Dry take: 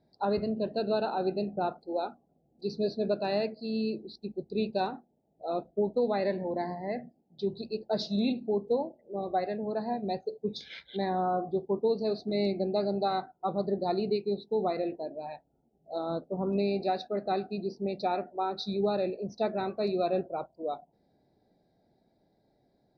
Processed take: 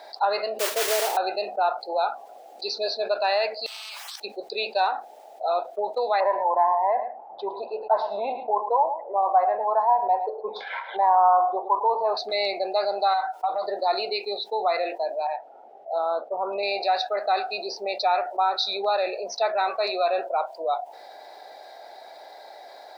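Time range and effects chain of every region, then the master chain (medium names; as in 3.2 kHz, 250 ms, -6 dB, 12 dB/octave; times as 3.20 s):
0.59–1.17 s: resonant low-pass 410 Hz, resonance Q 2.4 + modulation noise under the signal 11 dB
3.66–4.20 s: steep high-pass 1.1 kHz 48 dB/octave + compression, threshold -57 dBFS + spectrum-flattening compressor 10:1
6.20–12.17 s: resonant low-pass 1 kHz, resonance Q 6.7 + delay 109 ms -17 dB
13.13–13.62 s: comb 6.5 ms, depth 92% + compression, threshold -32 dBFS
15.27–16.63 s: low-pass 1 kHz 6 dB/octave + tape noise reduction on one side only decoder only
whole clip: high-pass 720 Hz 24 dB/octave; treble shelf 5.3 kHz -8.5 dB; level flattener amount 50%; trim +6 dB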